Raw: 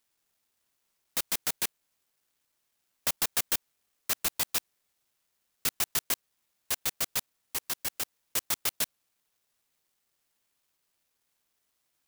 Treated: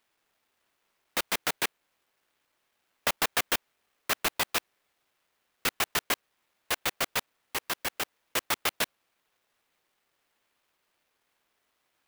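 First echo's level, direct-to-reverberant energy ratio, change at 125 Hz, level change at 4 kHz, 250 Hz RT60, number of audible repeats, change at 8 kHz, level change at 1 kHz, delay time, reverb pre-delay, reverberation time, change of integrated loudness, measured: no echo, no reverb, +2.0 dB, +3.0 dB, no reverb, no echo, -2.5 dB, +8.5 dB, no echo, no reverb, no reverb, +0.5 dB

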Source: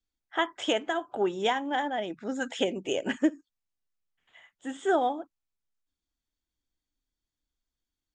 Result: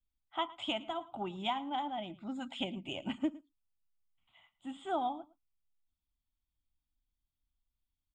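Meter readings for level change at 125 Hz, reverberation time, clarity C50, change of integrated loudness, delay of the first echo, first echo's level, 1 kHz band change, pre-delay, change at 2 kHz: -2.0 dB, no reverb, no reverb, -8.5 dB, 111 ms, -20.5 dB, -6.0 dB, no reverb, -13.0 dB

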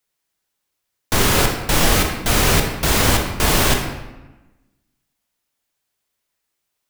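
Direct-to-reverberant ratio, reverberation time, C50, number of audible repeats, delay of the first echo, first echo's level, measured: 2.0 dB, 1.1 s, 4.5 dB, no echo, no echo, no echo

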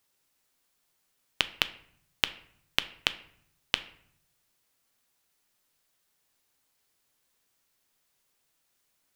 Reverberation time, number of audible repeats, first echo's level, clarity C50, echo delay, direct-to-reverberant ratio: 0.65 s, no echo, no echo, 16.0 dB, no echo, 11.5 dB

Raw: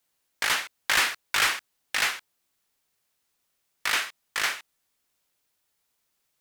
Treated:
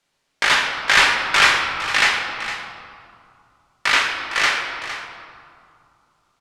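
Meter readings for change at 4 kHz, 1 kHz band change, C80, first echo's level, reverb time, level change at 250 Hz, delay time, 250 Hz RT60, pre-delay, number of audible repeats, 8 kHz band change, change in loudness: +8.5 dB, +11.5 dB, 4.5 dB, -12.0 dB, 2.4 s, +11.5 dB, 459 ms, 2.9 s, 5 ms, 1, +3.5 dB, +8.5 dB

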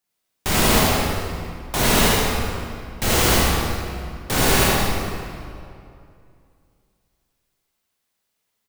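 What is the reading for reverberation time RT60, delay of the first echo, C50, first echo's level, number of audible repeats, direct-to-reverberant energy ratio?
2.5 s, 77 ms, -4.5 dB, -3.0 dB, 1, -7.0 dB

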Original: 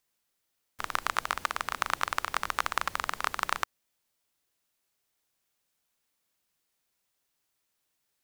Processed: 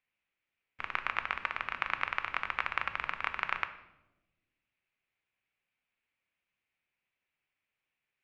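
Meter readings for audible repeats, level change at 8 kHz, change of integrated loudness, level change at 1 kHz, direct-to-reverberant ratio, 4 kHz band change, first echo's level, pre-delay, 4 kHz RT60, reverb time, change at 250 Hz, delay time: no echo, under -25 dB, -3.0 dB, -5.5 dB, 8.5 dB, -6.5 dB, no echo, 4 ms, 0.70 s, 1.0 s, -6.0 dB, no echo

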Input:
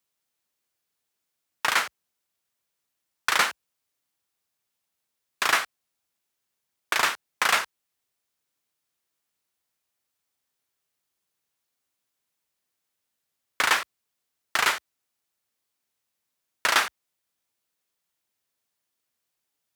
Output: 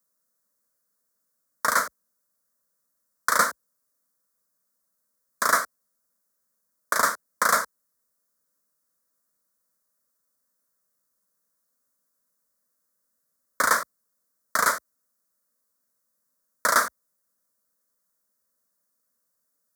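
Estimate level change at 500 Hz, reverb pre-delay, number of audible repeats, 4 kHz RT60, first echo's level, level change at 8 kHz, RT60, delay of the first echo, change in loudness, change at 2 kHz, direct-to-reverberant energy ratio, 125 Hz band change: +4.5 dB, no reverb, no echo, no reverb, no echo, +4.0 dB, no reverb, no echo, +0.5 dB, -1.0 dB, no reverb, no reading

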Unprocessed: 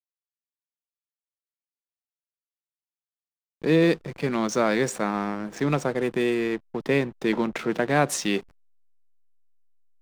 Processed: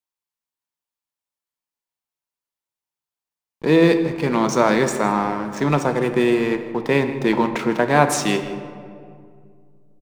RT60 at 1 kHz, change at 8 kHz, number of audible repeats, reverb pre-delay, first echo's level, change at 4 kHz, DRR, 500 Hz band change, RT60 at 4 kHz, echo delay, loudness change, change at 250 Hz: 2.1 s, +4.5 dB, 1, 8 ms, -17.0 dB, +4.5 dB, 7.0 dB, +5.5 dB, 1.1 s, 160 ms, +6.0 dB, +5.5 dB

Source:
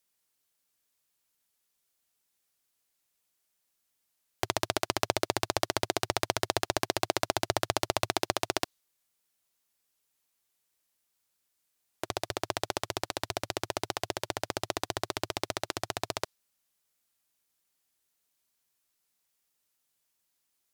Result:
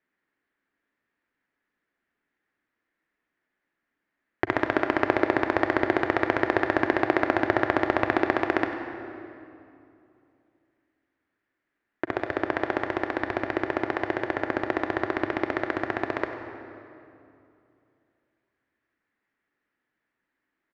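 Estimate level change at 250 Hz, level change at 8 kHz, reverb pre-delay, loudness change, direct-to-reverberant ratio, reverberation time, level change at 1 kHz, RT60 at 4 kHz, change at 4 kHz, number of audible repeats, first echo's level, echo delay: +12.5 dB, under -20 dB, 36 ms, +6.0 dB, 5.5 dB, 2.7 s, +6.0 dB, 1.9 s, -8.5 dB, 1, -15.0 dB, 96 ms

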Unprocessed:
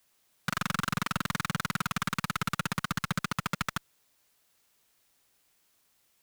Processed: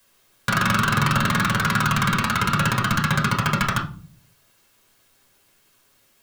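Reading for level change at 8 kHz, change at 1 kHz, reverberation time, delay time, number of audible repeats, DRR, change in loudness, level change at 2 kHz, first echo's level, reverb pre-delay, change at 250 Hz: +8.5 dB, +12.0 dB, 0.40 s, no echo, no echo, -0.5 dB, +11.5 dB, +12.0 dB, no echo, 9 ms, +11.5 dB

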